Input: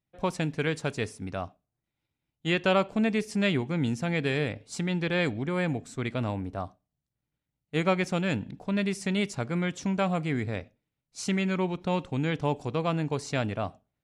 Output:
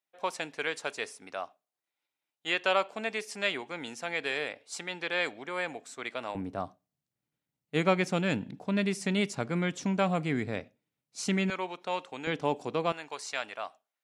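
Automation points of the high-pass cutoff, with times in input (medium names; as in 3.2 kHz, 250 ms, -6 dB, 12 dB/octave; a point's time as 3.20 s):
590 Hz
from 6.35 s 150 Hz
from 11.50 s 590 Hz
from 12.27 s 250 Hz
from 12.92 s 900 Hz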